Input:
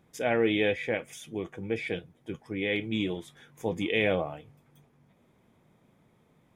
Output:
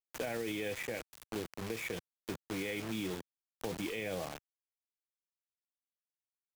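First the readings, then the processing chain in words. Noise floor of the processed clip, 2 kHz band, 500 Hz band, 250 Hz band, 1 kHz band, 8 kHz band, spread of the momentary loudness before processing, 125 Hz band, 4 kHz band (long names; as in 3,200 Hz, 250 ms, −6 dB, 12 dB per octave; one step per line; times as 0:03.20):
below −85 dBFS, −9.5 dB, −10.5 dB, −9.0 dB, −8.5 dB, +2.0 dB, 13 LU, −8.5 dB, −8.0 dB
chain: bit-depth reduction 6 bits, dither none
brickwall limiter −21.5 dBFS, peak gain reduction 9.5 dB
multiband upward and downward compressor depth 70%
level −6 dB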